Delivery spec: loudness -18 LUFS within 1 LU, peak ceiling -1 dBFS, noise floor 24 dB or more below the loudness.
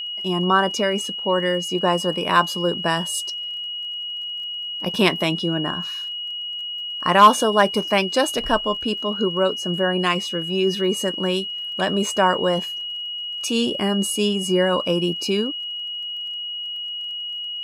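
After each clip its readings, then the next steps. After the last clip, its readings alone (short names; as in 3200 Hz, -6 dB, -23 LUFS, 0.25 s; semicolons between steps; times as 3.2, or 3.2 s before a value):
ticks 28/s; steady tone 2900 Hz; tone level -27 dBFS; loudness -21.5 LUFS; peak -3.0 dBFS; loudness target -18.0 LUFS
-> de-click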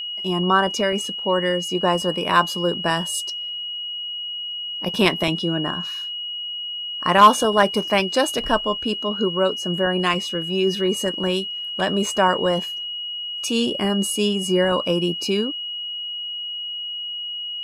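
ticks 0/s; steady tone 2900 Hz; tone level -27 dBFS
-> notch 2900 Hz, Q 30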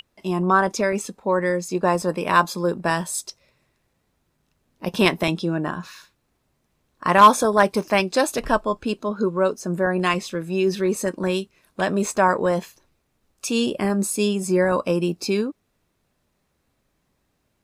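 steady tone none; loudness -21.5 LUFS; peak -3.0 dBFS; loudness target -18.0 LUFS
-> gain +3.5 dB; limiter -1 dBFS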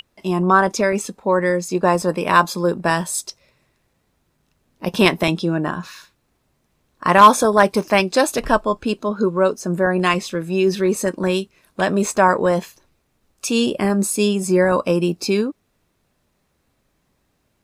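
loudness -18.5 LUFS; peak -1.0 dBFS; noise floor -68 dBFS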